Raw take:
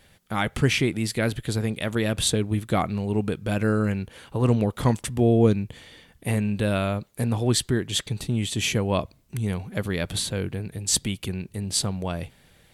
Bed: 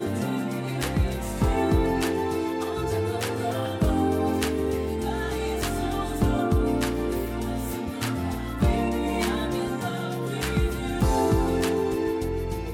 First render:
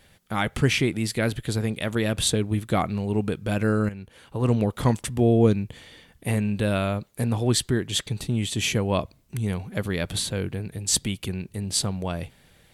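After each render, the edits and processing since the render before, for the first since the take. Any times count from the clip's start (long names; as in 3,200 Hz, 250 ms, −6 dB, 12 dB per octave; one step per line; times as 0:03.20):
0:03.89–0:04.62: fade in, from −12.5 dB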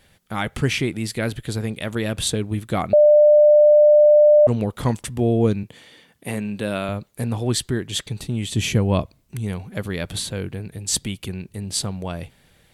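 0:02.93–0:04.47: beep over 597 Hz −8.5 dBFS
0:05.63–0:06.89: high-pass filter 160 Hz
0:08.49–0:09.03: low-shelf EQ 290 Hz +8.5 dB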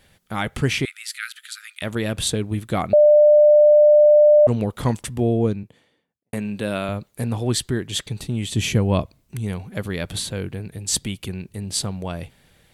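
0:00.85–0:01.82: linear-phase brick-wall high-pass 1,200 Hz
0:05.06–0:06.33: fade out and dull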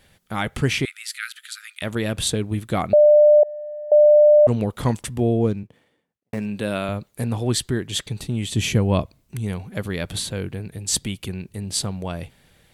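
0:03.43–0:03.92: downward expander 0 dBFS
0:05.41–0:06.46: running median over 9 samples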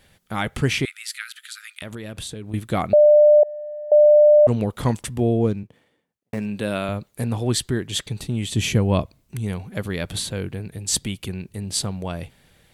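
0:01.21–0:02.54: downward compressor, threshold −30 dBFS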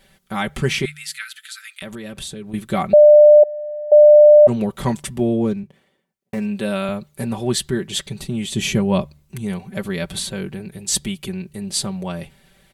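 comb filter 5.2 ms, depth 72%
hum removal 74.53 Hz, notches 2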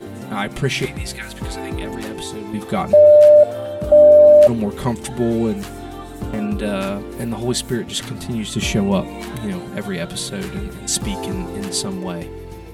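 mix in bed −5 dB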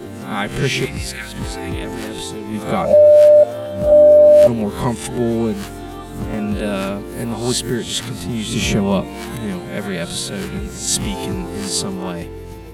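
peak hold with a rise ahead of every peak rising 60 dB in 0.45 s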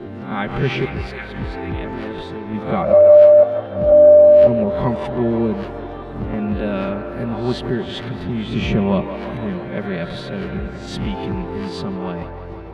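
high-frequency loss of the air 330 metres
delay with a band-pass on its return 163 ms, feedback 75%, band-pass 960 Hz, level −7 dB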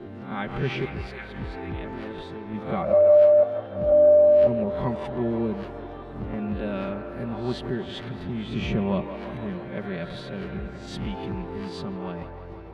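level −7.5 dB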